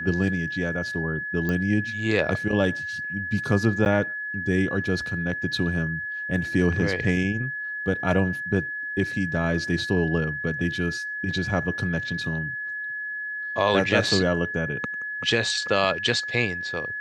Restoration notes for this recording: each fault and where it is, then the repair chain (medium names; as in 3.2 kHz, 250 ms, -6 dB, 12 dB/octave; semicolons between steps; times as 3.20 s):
whine 1.7 kHz -29 dBFS
1.49 s: pop -15 dBFS
3.85–3.86 s: dropout 9.5 ms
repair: de-click; band-stop 1.7 kHz, Q 30; interpolate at 3.85 s, 9.5 ms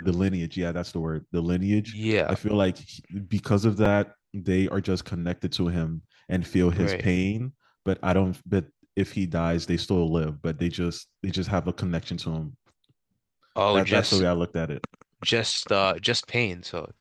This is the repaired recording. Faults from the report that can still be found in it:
nothing left